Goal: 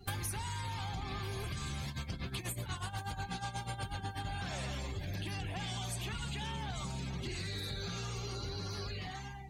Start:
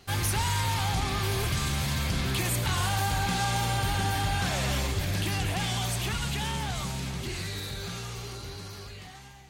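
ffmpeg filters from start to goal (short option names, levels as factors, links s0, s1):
-filter_complex "[0:a]asettb=1/sr,asplit=3[s0][s1][s2];[s0]atrim=end=1.884[s3];[s1]atrim=start=1.88:end=4.25,asetpts=PTS-STARTPTS,afade=t=in:d=0.004:c=qsin,afade=t=out:st=2.366:d=0.004:c=qsin,tremolo=f=8.2:d=0.73[s4];[s2]atrim=start=4.246[s5];[s3][s4]acrossfade=d=0.004:c1=hsin:c2=qsin[s6];[s6][s5]acrossfade=d=0.004:c1=qsin:c2=hsin,acompressor=threshold=0.01:ratio=16,afftdn=nr=23:nf=-52,highshelf=f=7900:g=8,volume=1.68"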